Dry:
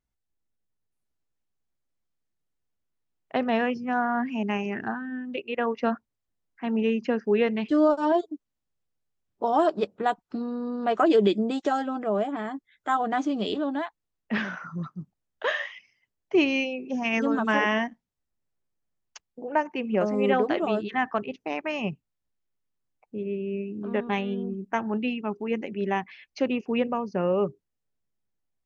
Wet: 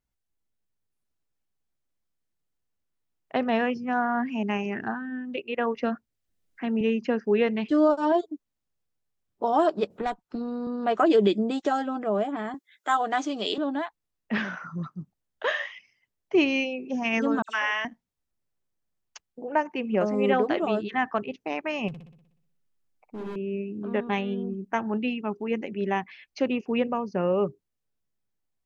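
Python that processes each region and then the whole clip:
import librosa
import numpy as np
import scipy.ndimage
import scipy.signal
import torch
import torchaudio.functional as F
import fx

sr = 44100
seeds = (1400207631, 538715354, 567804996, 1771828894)

y = fx.chain(x, sr, fx.peak_eq(hz=960.0, db=-7.0, octaves=0.74),
    fx.band_squash(depth_pct=40), at=(5.75, 6.81))
y = fx.chain(y, sr, fx.tube_stage(drive_db=19.0, bias=0.5),
    fx.band_squash(depth_pct=40), at=(9.9, 10.67))
y = fx.chain(y, sr, fx.highpass(hz=320.0, slope=12),
    fx.high_shelf(hz=2500.0, db=8.0), at=(12.54, 13.58))
y = fx.chain(y, sr, fx.highpass(hz=1100.0, slope=12),
    fx.dispersion(late='lows', ms=69.0, hz=3000.0), at=(17.42, 17.85))
y = fx.chain(y, sr, fx.overload_stage(gain_db=33.5),
    fx.room_flutter(wall_m=10.5, rt60_s=0.76), at=(21.88, 23.36))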